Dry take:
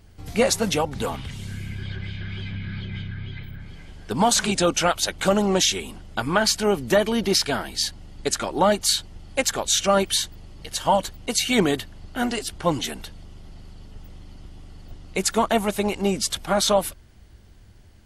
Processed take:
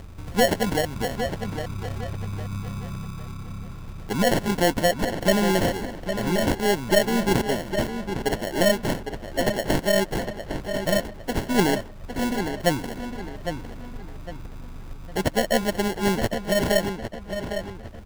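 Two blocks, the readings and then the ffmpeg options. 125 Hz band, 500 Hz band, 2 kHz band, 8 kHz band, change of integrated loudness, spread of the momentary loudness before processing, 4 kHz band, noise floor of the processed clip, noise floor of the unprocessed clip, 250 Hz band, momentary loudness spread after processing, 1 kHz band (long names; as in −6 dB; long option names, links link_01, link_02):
+2.0 dB, 0.0 dB, +1.0 dB, −9.0 dB, −2.0 dB, 14 LU, −5.5 dB, −39 dBFS, −49 dBFS, +1.0 dB, 16 LU, −3.0 dB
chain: -filter_complex "[0:a]acompressor=mode=upward:threshold=-31dB:ratio=2.5,aeval=exprs='0.447*(cos(1*acos(clip(val(0)/0.447,-1,1)))-cos(1*PI/2))+0.126*(cos(2*acos(clip(val(0)/0.447,-1,1)))-cos(2*PI/2))':channel_layout=same,afftfilt=real='re*(1-between(b*sr/4096,740,4600))':imag='im*(1-between(b*sr/4096,740,4600))':win_size=4096:overlap=0.75,acrusher=samples=36:mix=1:aa=0.000001,asplit=2[link_01][link_02];[link_02]adelay=807,lowpass=frequency=4400:poles=1,volume=-8dB,asplit=2[link_03][link_04];[link_04]adelay=807,lowpass=frequency=4400:poles=1,volume=0.36,asplit=2[link_05][link_06];[link_06]adelay=807,lowpass=frequency=4400:poles=1,volume=0.36,asplit=2[link_07][link_08];[link_08]adelay=807,lowpass=frequency=4400:poles=1,volume=0.36[link_09];[link_01][link_03][link_05][link_07][link_09]amix=inputs=5:normalize=0"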